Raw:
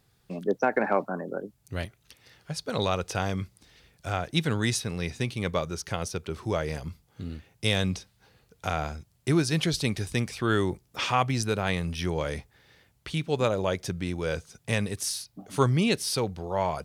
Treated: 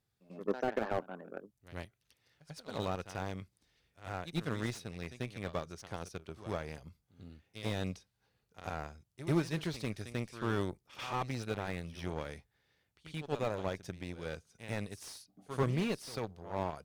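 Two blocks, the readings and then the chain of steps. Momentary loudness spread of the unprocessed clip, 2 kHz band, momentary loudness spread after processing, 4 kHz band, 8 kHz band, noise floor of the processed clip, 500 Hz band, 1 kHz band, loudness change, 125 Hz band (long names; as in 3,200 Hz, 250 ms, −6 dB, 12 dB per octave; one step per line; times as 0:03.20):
12 LU, −11.5 dB, 15 LU, −14.5 dB, −16.5 dB, −80 dBFS, −9.5 dB, −10.0 dB, −10.0 dB, −10.0 dB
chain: harmonic generator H 5 −28 dB, 7 −18 dB, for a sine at −9 dBFS
echo ahead of the sound 92 ms −14.5 dB
slew-rate limiting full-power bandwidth 70 Hz
level −6.5 dB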